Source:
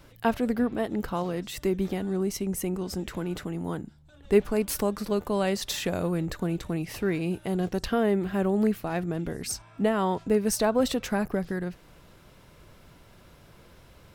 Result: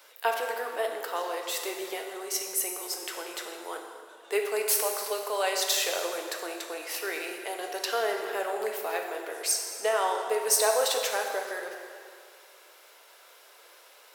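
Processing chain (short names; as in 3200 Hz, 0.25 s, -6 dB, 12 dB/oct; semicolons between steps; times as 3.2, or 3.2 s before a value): steep high-pass 420 Hz 36 dB/oct; tilt +2 dB/oct; plate-style reverb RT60 2.2 s, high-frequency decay 0.75×, DRR 2 dB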